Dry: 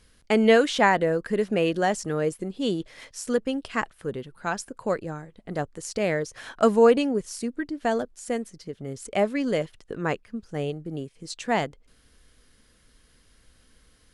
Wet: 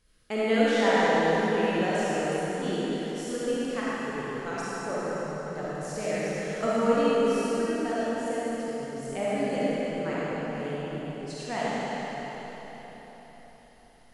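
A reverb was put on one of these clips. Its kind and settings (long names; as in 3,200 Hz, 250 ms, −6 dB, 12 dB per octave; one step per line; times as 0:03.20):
comb and all-pass reverb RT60 4.6 s, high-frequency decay 0.9×, pre-delay 10 ms, DRR −9.5 dB
level −11.5 dB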